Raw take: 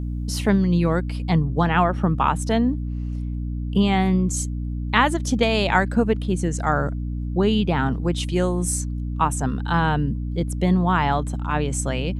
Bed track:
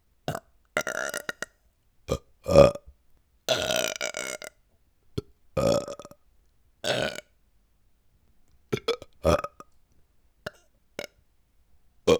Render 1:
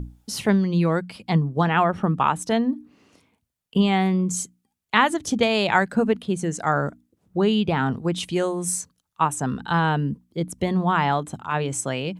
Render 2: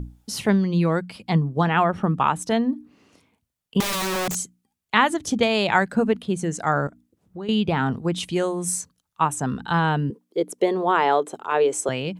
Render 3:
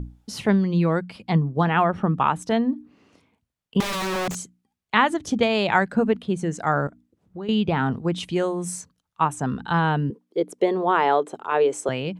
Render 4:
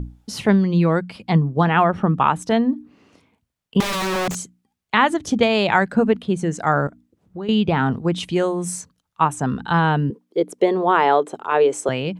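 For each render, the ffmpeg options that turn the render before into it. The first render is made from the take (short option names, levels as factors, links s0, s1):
-af "bandreject=f=60:t=h:w=6,bandreject=f=120:t=h:w=6,bandreject=f=180:t=h:w=6,bandreject=f=240:t=h:w=6,bandreject=f=300:t=h:w=6"
-filter_complex "[0:a]asettb=1/sr,asplit=3[s0][s1][s2];[s0]atrim=end=3.804[s3];[s1]atrim=start=3.8:end=4.35,asetpts=PTS-STARTPTS,afade=t=in:d=0.004:c=qsin,afade=t=out:st=0.546:d=0.004:c=qsin,aeval=exprs='(mod(11.2*val(0)+1,2)-1)/11.2':c=same[s4];[s2]atrim=start=4.346[s5];[s3][s4]acrossfade=d=0.004:c1=hsin:c2=qsin[s6];[s6][s5]acrossfade=d=0.004:c1=qsin:c2=hsin,asettb=1/sr,asplit=3[s7][s8][s9];[s7]atrim=end=6.874[s10];[s8]atrim=start=6.87:end=7.49,asetpts=PTS-STARTPTS,afade=t=in:d=0.004:c=qsin,afade=t=out:st=0.616:d=0.004:c=qsin,acompressor=threshold=0.00891:ratio=2:attack=3.2:release=140:knee=1:detection=peak[s11];[s9]atrim=start=7.486[s12];[s10][s11]acrossfade=d=0.004:c1=hsin:c2=qsin[s13];[s13][s12]acrossfade=d=0.004:c1=qsin:c2=hsin,asettb=1/sr,asplit=3[s14][s15][s16];[s14]atrim=end=10.104[s17];[s15]atrim=start=10.1:end=11.89,asetpts=PTS-STARTPTS,afade=t=in:d=0.004:c=qsin,afade=t=out:st=1.786:d=0.004:c=qsin,highpass=f=420:t=q:w=3.6[s18];[s16]atrim=start=11.886[s19];[s17][s18]acrossfade=d=0.004:c1=hsin:c2=qsin[s20];[s20][s19]acrossfade=d=0.004:c1=qsin:c2=hsin"
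-af "lowpass=f=3900:p=1"
-af "volume=1.5,alimiter=limit=0.708:level=0:latency=1"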